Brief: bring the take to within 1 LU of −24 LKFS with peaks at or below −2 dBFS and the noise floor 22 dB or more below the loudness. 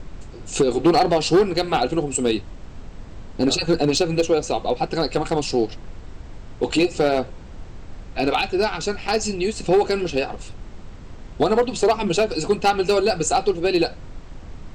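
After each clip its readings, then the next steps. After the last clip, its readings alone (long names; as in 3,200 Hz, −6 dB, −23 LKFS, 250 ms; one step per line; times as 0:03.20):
share of clipped samples 0.6%; peaks flattened at −10.5 dBFS; background noise floor −39 dBFS; target noise floor −43 dBFS; integrated loudness −21.0 LKFS; sample peak −10.5 dBFS; target loudness −24.0 LKFS
→ clipped peaks rebuilt −10.5 dBFS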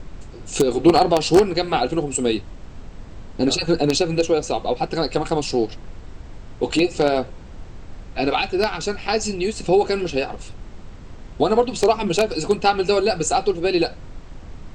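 share of clipped samples 0.0%; background noise floor −39 dBFS; target noise floor −43 dBFS
→ noise reduction from a noise print 6 dB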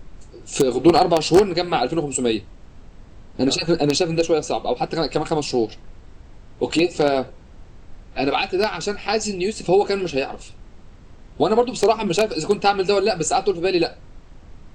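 background noise floor −45 dBFS; integrated loudness −20.5 LKFS; sample peak −1.5 dBFS; target loudness −24.0 LKFS
→ level −3.5 dB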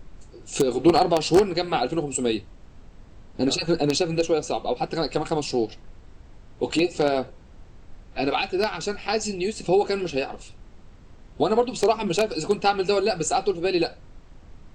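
integrated loudness −24.0 LKFS; sample peak −5.0 dBFS; background noise floor −48 dBFS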